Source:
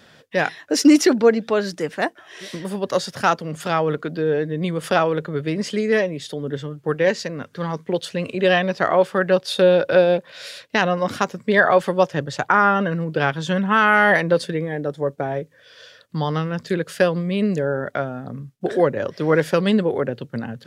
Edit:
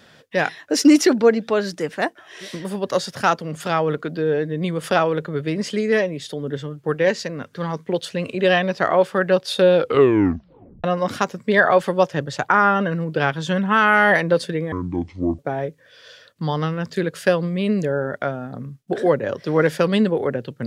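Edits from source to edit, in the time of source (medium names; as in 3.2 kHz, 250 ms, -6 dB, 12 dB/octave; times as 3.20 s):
9.75 s: tape stop 1.09 s
14.72–15.12 s: speed 60%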